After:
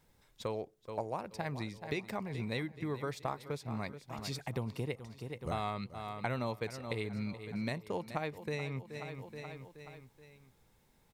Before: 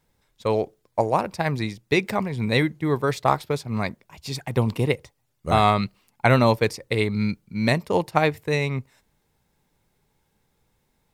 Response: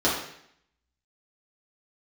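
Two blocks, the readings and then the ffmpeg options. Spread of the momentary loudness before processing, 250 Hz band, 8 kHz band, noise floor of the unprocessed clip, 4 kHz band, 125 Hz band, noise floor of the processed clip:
10 LU, -14.5 dB, -12.5 dB, -71 dBFS, -14.5 dB, -15.0 dB, -69 dBFS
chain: -filter_complex "[0:a]asplit=2[s0][s1];[s1]aecho=0:1:426|852|1278|1704:0.15|0.0718|0.0345|0.0165[s2];[s0][s2]amix=inputs=2:normalize=0,acompressor=threshold=0.01:ratio=3"

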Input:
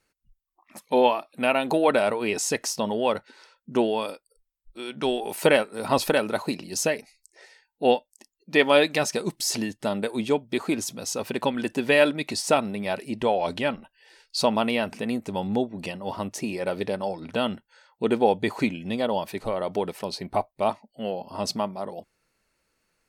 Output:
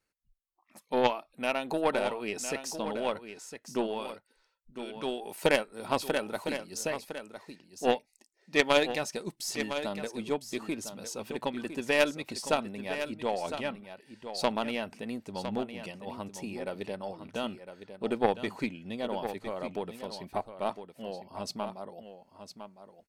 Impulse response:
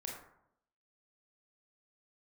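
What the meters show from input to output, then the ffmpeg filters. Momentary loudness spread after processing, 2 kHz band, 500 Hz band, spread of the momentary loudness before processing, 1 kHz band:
15 LU, -6.0 dB, -7.5 dB, 10 LU, -7.0 dB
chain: -af "aeval=exprs='0.562*(cos(1*acos(clip(val(0)/0.562,-1,1)))-cos(1*PI/2))+0.158*(cos(3*acos(clip(val(0)/0.562,-1,1)))-cos(3*PI/2))+0.00631*(cos(4*acos(clip(val(0)/0.562,-1,1)))-cos(4*PI/2))+0.0251*(cos(5*acos(clip(val(0)/0.562,-1,1)))-cos(5*PI/2))+0.00447*(cos(7*acos(clip(val(0)/0.562,-1,1)))-cos(7*PI/2))':c=same,aecho=1:1:1007:0.316"

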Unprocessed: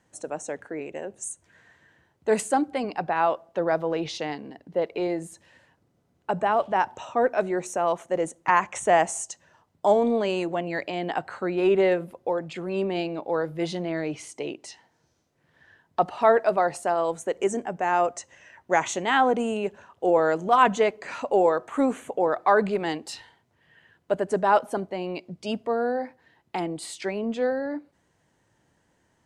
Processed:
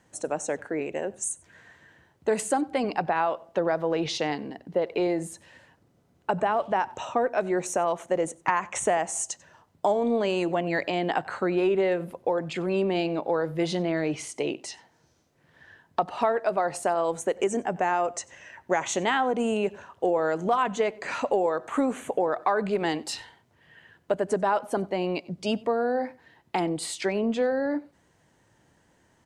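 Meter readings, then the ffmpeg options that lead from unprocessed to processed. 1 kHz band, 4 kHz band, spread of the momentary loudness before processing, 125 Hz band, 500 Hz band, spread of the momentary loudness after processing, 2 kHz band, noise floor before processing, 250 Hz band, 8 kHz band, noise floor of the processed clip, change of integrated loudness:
-3.0 dB, +1.0 dB, 13 LU, +1.0 dB, -1.5 dB, 7 LU, -2.0 dB, -69 dBFS, 0.0 dB, +2.5 dB, -65 dBFS, -1.5 dB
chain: -filter_complex "[0:a]acompressor=threshold=0.0562:ratio=6,asplit=2[s0][s1];[s1]adelay=93.29,volume=0.0708,highshelf=f=4000:g=-2.1[s2];[s0][s2]amix=inputs=2:normalize=0,volume=1.58"

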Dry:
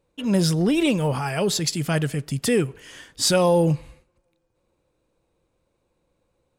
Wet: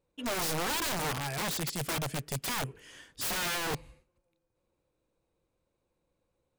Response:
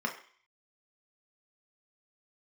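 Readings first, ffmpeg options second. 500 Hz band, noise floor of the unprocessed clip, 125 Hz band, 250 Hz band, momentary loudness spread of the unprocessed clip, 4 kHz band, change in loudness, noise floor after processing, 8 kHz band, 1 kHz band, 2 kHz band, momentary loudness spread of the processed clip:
-16.0 dB, -73 dBFS, -15.0 dB, -17.5 dB, 8 LU, -7.0 dB, -10.5 dB, -81 dBFS, -7.0 dB, -5.5 dB, -3.5 dB, 7 LU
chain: -af "aeval=exprs='(mod(8.91*val(0)+1,2)-1)/8.91':c=same,volume=0.376"

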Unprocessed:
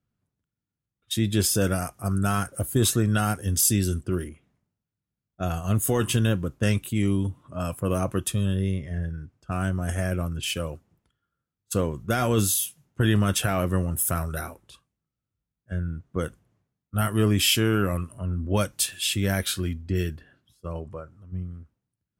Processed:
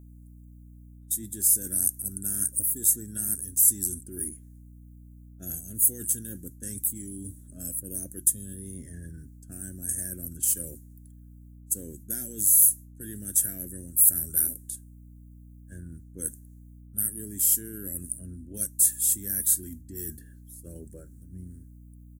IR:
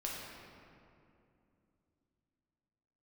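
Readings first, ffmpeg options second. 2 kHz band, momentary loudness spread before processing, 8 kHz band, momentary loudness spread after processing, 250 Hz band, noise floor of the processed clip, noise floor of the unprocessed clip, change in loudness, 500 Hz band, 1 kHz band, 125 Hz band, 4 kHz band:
under -20 dB, 14 LU, +6.0 dB, 21 LU, -14.5 dB, -49 dBFS, under -85 dBFS, +1.0 dB, -19.0 dB, under -30 dB, -17.0 dB, -19.5 dB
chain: -af "firequalizer=gain_entry='entry(150,0);entry(260,10);entry(1100,-28);entry(1600,5);entry(2500,-11);entry(4400,8)':delay=0.05:min_phase=1,areverse,acompressor=threshold=0.0316:ratio=6,areverse,aexciter=amount=10.9:drive=6.6:freq=7000,aeval=exprs='val(0)+0.0126*(sin(2*PI*60*n/s)+sin(2*PI*2*60*n/s)/2+sin(2*PI*3*60*n/s)/3+sin(2*PI*4*60*n/s)/4+sin(2*PI*5*60*n/s)/5)':c=same,volume=0.355"

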